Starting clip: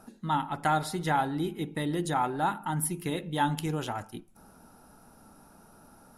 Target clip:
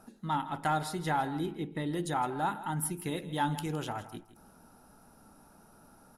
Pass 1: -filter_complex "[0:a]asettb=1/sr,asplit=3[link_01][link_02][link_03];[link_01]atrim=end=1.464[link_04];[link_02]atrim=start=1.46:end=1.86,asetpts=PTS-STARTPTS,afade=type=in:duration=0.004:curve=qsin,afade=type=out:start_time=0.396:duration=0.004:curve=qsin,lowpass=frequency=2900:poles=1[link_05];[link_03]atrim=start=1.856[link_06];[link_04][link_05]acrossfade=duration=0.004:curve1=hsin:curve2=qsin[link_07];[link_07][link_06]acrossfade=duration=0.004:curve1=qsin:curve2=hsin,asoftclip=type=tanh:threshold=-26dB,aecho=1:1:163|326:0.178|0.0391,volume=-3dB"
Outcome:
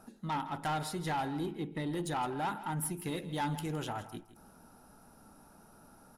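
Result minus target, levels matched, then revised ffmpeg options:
soft clipping: distortion +16 dB
-filter_complex "[0:a]asettb=1/sr,asplit=3[link_01][link_02][link_03];[link_01]atrim=end=1.464[link_04];[link_02]atrim=start=1.46:end=1.86,asetpts=PTS-STARTPTS,afade=type=in:duration=0.004:curve=qsin,afade=type=out:start_time=0.396:duration=0.004:curve=qsin,lowpass=frequency=2900:poles=1[link_05];[link_03]atrim=start=1.856[link_06];[link_04][link_05]acrossfade=duration=0.004:curve1=hsin:curve2=qsin[link_07];[link_07][link_06]acrossfade=duration=0.004:curve1=qsin:curve2=hsin,asoftclip=type=tanh:threshold=-14dB,aecho=1:1:163|326:0.178|0.0391,volume=-3dB"

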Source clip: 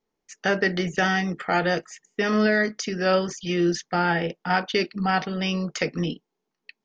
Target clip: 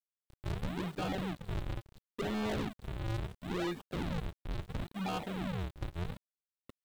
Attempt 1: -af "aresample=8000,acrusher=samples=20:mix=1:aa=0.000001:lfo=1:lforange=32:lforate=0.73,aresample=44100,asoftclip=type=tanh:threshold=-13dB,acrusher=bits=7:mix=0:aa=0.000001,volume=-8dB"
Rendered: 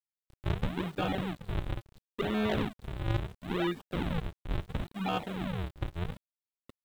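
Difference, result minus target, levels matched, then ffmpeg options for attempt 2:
soft clipping: distortion −11 dB
-af "aresample=8000,acrusher=samples=20:mix=1:aa=0.000001:lfo=1:lforange=32:lforate=0.73,aresample=44100,asoftclip=type=tanh:threshold=-23.5dB,acrusher=bits=7:mix=0:aa=0.000001,volume=-8dB"

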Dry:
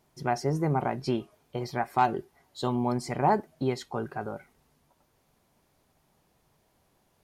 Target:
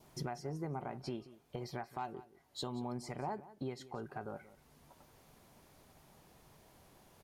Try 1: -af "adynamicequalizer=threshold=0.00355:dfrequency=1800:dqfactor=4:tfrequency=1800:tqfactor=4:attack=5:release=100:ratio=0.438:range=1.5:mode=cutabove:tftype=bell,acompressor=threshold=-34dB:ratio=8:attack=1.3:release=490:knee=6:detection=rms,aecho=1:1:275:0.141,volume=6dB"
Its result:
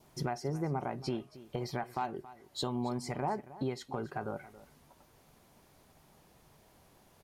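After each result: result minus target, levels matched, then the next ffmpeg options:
echo 94 ms late; downward compressor: peak gain reduction −6 dB
-af "adynamicequalizer=threshold=0.00355:dfrequency=1800:dqfactor=4:tfrequency=1800:tqfactor=4:attack=5:release=100:ratio=0.438:range=1.5:mode=cutabove:tftype=bell,acompressor=threshold=-34dB:ratio=8:attack=1.3:release=490:knee=6:detection=rms,aecho=1:1:181:0.141,volume=6dB"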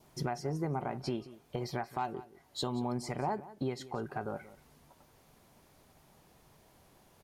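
downward compressor: peak gain reduction −6 dB
-af "adynamicequalizer=threshold=0.00355:dfrequency=1800:dqfactor=4:tfrequency=1800:tqfactor=4:attack=5:release=100:ratio=0.438:range=1.5:mode=cutabove:tftype=bell,acompressor=threshold=-41dB:ratio=8:attack=1.3:release=490:knee=6:detection=rms,aecho=1:1:181:0.141,volume=6dB"

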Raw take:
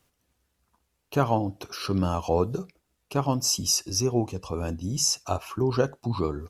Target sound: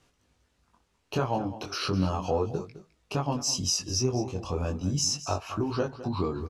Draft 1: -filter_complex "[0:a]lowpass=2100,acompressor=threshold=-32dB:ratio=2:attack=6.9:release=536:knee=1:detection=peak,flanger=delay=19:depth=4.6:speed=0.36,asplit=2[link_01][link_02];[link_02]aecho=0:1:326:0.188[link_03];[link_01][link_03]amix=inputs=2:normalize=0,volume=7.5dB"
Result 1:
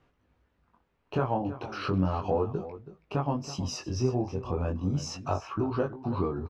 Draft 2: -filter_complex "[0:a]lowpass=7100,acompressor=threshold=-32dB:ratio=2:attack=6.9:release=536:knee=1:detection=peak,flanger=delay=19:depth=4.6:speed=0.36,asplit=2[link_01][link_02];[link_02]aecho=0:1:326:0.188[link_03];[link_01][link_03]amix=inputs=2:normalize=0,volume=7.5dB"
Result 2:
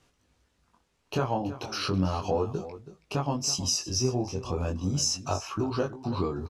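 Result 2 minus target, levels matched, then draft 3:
echo 117 ms late
-filter_complex "[0:a]lowpass=7100,acompressor=threshold=-32dB:ratio=2:attack=6.9:release=536:knee=1:detection=peak,flanger=delay=19:depth=4.6:speed=0.36,asplit=2[link_01][link_02];[link_02]aecho=0:1:209:0.188[link_03];[link_01][link_03]amix=inputs=2:normalize=0,volume=7.5dB"

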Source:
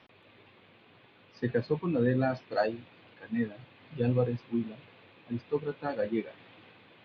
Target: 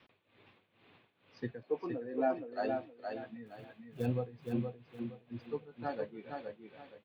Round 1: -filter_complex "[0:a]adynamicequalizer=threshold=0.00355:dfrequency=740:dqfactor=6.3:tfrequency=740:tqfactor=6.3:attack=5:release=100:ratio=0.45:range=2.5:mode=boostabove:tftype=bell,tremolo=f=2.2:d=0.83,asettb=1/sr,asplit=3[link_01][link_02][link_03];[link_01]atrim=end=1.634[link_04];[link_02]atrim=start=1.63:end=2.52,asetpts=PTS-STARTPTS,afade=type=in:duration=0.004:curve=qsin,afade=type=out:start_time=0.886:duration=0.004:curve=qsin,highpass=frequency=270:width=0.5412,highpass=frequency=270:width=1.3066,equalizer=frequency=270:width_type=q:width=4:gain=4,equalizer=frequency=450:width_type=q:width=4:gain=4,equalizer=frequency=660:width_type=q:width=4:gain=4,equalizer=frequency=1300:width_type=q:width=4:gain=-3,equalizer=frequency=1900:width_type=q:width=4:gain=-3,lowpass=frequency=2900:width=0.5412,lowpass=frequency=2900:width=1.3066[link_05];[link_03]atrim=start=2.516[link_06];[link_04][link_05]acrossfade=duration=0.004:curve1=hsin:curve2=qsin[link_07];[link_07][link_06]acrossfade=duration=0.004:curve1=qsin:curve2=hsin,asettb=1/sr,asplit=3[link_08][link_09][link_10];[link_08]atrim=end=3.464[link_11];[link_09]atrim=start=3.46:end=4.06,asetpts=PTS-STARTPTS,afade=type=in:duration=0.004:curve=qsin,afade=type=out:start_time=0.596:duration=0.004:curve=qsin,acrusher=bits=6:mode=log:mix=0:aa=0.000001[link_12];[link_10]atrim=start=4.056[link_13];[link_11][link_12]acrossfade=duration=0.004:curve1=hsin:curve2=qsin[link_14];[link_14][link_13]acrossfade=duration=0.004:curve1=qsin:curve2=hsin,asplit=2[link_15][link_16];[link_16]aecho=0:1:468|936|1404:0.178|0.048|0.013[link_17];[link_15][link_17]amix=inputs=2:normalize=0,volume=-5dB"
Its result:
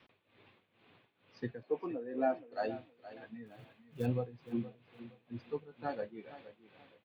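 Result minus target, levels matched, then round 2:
echo-to-direct −10 dB
-filter_complex "[0:a]adynamicequalizer=threshold=0.00355:dfrequency=740:dqfactor=6.3:tfrequency=740:tqfactor=6.3:attack=5:release=100:ratio=0.45:range=2.5:mode=boostabove:tftype=bell,tremolo=f=2.2:d=0.83,asettb=1/sr,asplit=3[link_01][link_02][link_03];[link_01]atrim=end=1.634[link_04];[link_02]atrim=start=1.63:end=2.52,asetpts=PTS-STARTPTS,afade=type=in:duration=0.004:curve=qsin,afade=type=out:start_time=0.886:duration=0.004:curve=qsin,highpass=frequency=270:width=0.5412,highpass=frequency=270:width=1.3066,equalizer=frequency=270:width_type=q:width=4:gain=4,equalizer=frequency=450:width_type=q:width=4:gain=4,equalizer=frequency=660:width_type=q:width=4:gain=4,equalizer=frequency=1300:width_type=q:width=4:gain=-3,equalizer=frequency=1900:width_type=q:width=4:gain=-3,lowpass=frequency=2900:width=0.5412,lowpass=frequency=2900:width=1.3066[link_05];[link_03]atrim=start=2.516[link_06];[link_04][link_05]acrossfade=duration=0.004:curve1=hsin:curve2=qsin[link_07];[link_07][link_06]acrossfade=duration=0.004:curve1=qsin:curve2=hsin,asettb=1/sr,asplit=3[link_08][link_09][link_10];[link_08]atrim=end=3.464[link_11];[link_09]atrim=start=3.46:end=4.06,asetpts=PTS-STARTPTS,afade=type=in:duration=0.004:curve=qsin,afade=type=out:start_time=0.596:duration=0.004:curve=qsin,acrusher=bits=6:mode=log:mix=0:aa=0.000001[link_12];[link_10]atrim=start=4.056[link_13];[link_11][link_12]acrossfade=duration=0.004:curve1=hsin:curve2=qsin[link_14];[link_14][link_13]acrossfade=duration=0.004:curve1=qsin:curve2=hsin,asplit=2[link_15][link_16];[link_16]aecho=0:1:468|936|1404|1872:0.562|0.152|0.041|0.0111[link_17];[link_15][link_17]amix=inputs=2:normalize=0,volume=-5dB"

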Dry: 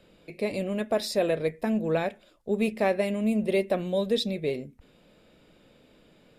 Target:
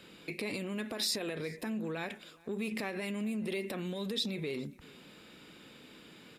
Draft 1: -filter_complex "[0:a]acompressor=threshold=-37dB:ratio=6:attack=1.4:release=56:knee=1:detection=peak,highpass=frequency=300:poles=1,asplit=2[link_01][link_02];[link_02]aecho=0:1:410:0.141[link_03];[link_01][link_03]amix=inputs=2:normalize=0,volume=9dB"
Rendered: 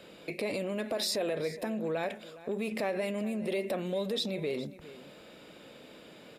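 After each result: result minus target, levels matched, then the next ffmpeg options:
echo-to-direct +7.5 dB; 500 Hz band +4.0 dB
-filter_complex "[0:a]acompressor=threshold=-37dB:ratio=6:attack=1.4:release=56:knee=1:detection=peak,highpass=frequency=300:poles=1,asplit=2[link_01][link_02];[link_02]aecho=0:1:410:0.0596[link_03];[link_01][link_03]amix=inputs=2:normalize=0,volume=9dB"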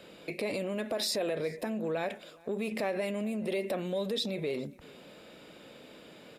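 500 Hz band +4.0 dB
-filter_complex "[0:a]acompressor=threshold=-37dB:ratio=6:attack=1.4:release=56:knee=1:detection=peak,highpass=frequency=300:poles=1,equalizer=frequency=600:width_type=o:width=0.78:gain=-12,asplit=2[link_01][link_02];[link_02]aecho=0:1:410:0.0596[link_03];[link_01][link_03]amix=inputs=2:normalize=0,volume=9dB"

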